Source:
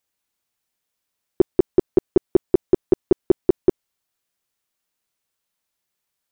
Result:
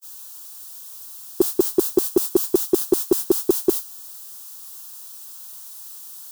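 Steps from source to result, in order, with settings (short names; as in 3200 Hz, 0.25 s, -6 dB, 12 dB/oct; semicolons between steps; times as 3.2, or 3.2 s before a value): zero-crossing step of -31 dBFS; tilt +3 dB/oct; fixed phaser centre 570 Hz, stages 6; gate -25 dBFS, range -55 dB; gain +3.5 dB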